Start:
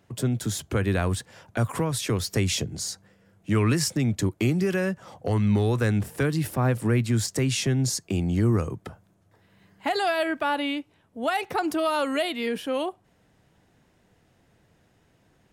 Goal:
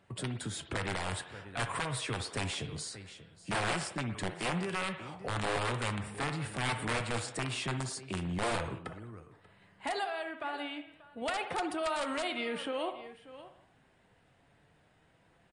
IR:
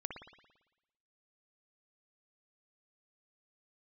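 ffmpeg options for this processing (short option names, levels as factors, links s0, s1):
-filter_complex "[0:a]asettb=1/sr,asplit=3[s0][s1][s2];[s0]atrim=end=10.044[s3];[s1]atrim=start=10.04:end=11.22,asetpts=PTS-STARTPTS,afade=t=in:d=0.004:c=qsin,afade=t=out:st=1.176:d=0.004:c=qsin,acompressor=threshold=0.02:ratio=8[s4];[s2]atrim=start=11.216[s5];[s3][s4]acrossfade=d=0.004:c1=hsin:c2=qsin[s6];[s6][s5]acrossfade=d=0.004:c1=qsin:c2=hsin,aecho=1:1:586:0.1,aeval=exprs='(mod(6.68*val(0)+1,2)-1)/6.68':c=same,alimiter=limit=0.0631:level=0:latency=1:release=79,equalizer=f=6100:w=1.7:g=-12,asplit=2[s7][s8];[s8]highpass=510[s9];[1:a]atrim=start_sample=2205,afade=t=out:st=0.28:d=0.01,atrim=end_sample=12789[s10];[s9][s10]afir=irnorm=-1:irlink=0,volume=1.12[s11];[s7][s11]amix=inputs=2:normalize=0,flanger=delay=5.1:depth=2.6:regen=79:speed=0.25:shape=triangular" -ar 22050 -c:a libmp3lame -b:a 48k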